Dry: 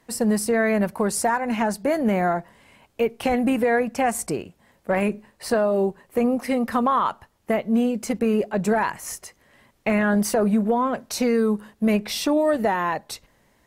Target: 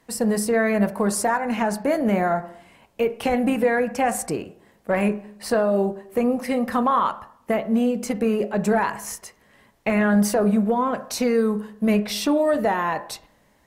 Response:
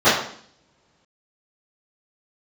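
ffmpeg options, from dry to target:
-filter_complex "[0:a]asplit=2[link_01][link_02];[1:a]atrim=start_sample=2205,asetrate=41013,aresample=44100,lowpass=3100[link_03];[link_02][link_03]afir=irnorm=-1:irlink=0,volume=-36dB[link_04];[link_01][link_04]amix=inputs=2:normalize=0"

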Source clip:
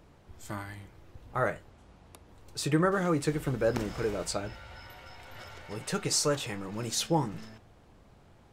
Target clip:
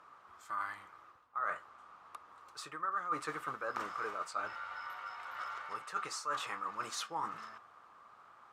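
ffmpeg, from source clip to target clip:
ffmpeg -i in.wav -af "crystalizer=i=3.5:c=0,acrusher=bits=6:mode=log:mix=0:aa=0.000001,bandpass=frequency=1200:width_type=q:width=7.7:csg=0,areverse,acompressor=threshold=-50dB:ratio=6,areverse,volume=15dB" out.wav

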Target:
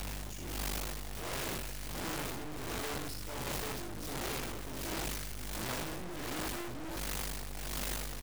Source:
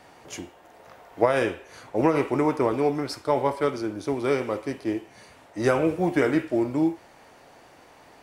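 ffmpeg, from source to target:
ffmpeg -i in.wav -filter_complex "[0:a]aeval=exprs='val(0)+0.5*0.0531*sgn(val(0))':channel_layout=same,aecho=1:1:32|46|66:0.316|0.422|0.596,aeval=exprs='val(0)+0.0282*(sin(2*PI*50*n/s)+sin(2*PI*2*50*n/s)/2+sin(2*PI*3*50*n/s)/3+sin(2*PI*4*50*n/s)/4+sin(2*PI*5*50*n/s)/5)':channel_layout=same,equalizer=frequency=1100:width=0.32:gain=-9.5,acrossover=split=240|1100|3600[link_01][link_02][link_03][link_04];[link_01]acontrast=28[link_05];[link_03]aecho=1:1:4.8:0.92[link_06];[link_05][link_02][link_06][link_04]amix=inputs=4:normalize=0,alimiter=limit=-16.5dB:level=0:latency=1:release=133,dynaudnorm=framelen=410:gausssize=3:maxgain=15dB,aeval=exprs='0.15*(cos(1*acos(clip(val(0)/0.15,-1,1)))-cos(1*PI/2))+0.0531*(cos(2*acos(clip(val(0)/0.15,-1,1)))-cos(2*PI/2))+0.0211*(cos(6*acos(clip(val(0)/0.15,-1,1)))-cos(6*PI/2))':channel_layout=same,tremolo=f=1.4:d=0.89,aeval=exprs='clip(val(0),-1,0.0133)':channel_layout=same" out.wav

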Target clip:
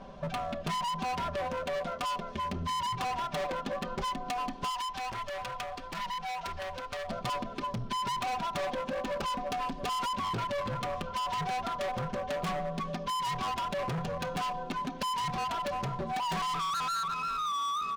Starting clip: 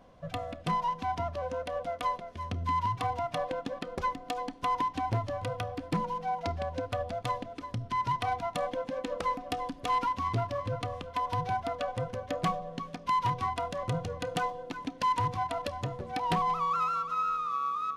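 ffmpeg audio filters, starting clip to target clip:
ffmpeg -i in.wav -filter_complex "[0:a]lowpass=6100,bandreject=frequency=2000:width=17,aecho=1:1:5.1:0.85,asoftclip=type=hard:threshold=-34.5dB,acompressor=threshold=-40dB:ratio=6,asettb=1/sr,asplit=3[link_01][link_02][link_03];[link_01]atrim=end=4.704[link_04];[link_02]atrim=start=4.7:end=7.09,asetpts=PTS-STARTPTS,afade=type=in:duration=0.004:curve=qsin,afade=type=out:start_time=2.386:duration=0.004:curve=qsin,equalizer=frequency=200:width=0.44:gain=-12.5[link_05];[link_03]atrim=start=7.086[link_06];[link_04][link_05]acrossfade=duration=0.004:curve1=hsin:curve2=qsin[link_07];[link_07][link_06]acrossfade=duration=0.004:curve1=qsin:curve2=hsin,volume=8dB" out.wav

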